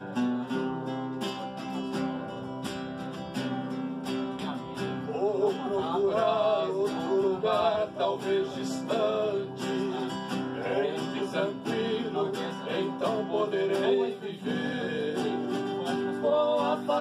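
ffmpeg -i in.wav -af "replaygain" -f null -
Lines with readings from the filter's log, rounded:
track_gain = +9.9 dB
track_peak = 0.145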